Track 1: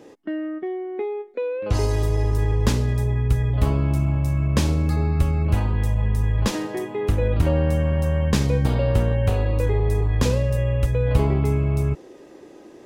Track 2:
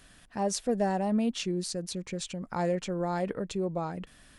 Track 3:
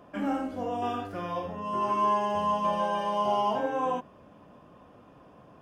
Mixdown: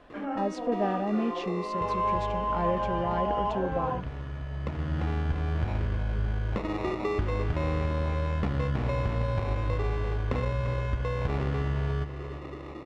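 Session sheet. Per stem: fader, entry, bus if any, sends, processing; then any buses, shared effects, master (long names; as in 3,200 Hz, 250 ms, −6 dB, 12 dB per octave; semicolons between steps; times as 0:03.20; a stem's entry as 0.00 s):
+2.5 dB, 0.10 s, no send, echo send −10.5 dB, parametric band 1,100 Hz +5.5 dB 0.87 octaves; downward compressor 4 to 1, threshold −30 dBFS, peak gain reduction 15 dB; decimation without filtering 28×; automatic ducking −12 dB, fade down 0.65 s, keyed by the second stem
−1.0 dB, 0.00 s, no send, no echo send, no processing
−2.5 dB, 0.00 s, no send, no echo send, high-pass filter 270 Hz 12 dB per octave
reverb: not used
echo: repeating echo 345 ms, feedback 49%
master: low-pass filter 2,600 Hz 12 dB per octave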